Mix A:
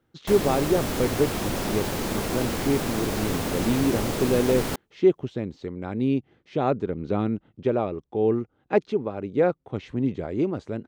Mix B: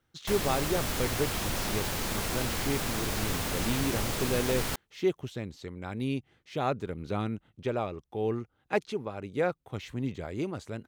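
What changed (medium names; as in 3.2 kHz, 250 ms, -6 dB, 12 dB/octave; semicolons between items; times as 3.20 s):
speech: remove distance through air 99 m; master: add peaking EQ 320 Hz -9.5 dB 2.7 oct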